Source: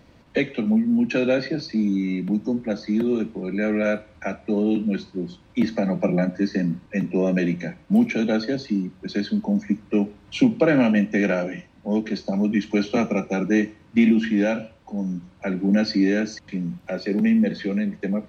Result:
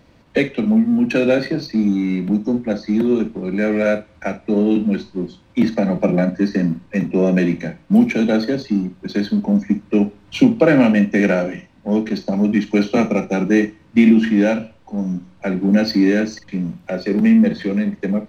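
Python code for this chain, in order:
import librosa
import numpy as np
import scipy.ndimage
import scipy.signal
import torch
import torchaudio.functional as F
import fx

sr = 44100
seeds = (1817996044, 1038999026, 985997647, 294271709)

p1 = fx.backlash(x, sr, play_db=-26.0)
p2 = x + (p1 * librosa.db_to_amplitude(-4.5))
p3 = fx.doubler(p2, sr, ms=49.0, db=-12.5)
y = p3 * librosa.db_to_amplitude(1.0)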